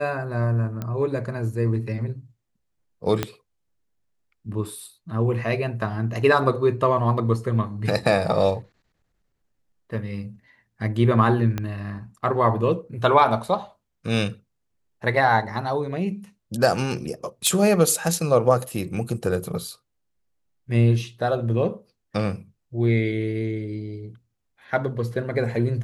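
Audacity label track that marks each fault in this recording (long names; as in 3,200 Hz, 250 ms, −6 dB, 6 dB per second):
0.820000	0.820000	click −17 dBFS
3.230000	3.230000	click −8 dBFS
11.580000	11.580000	click −13 dBFS
17.470000	17.470000	click −6 dBFS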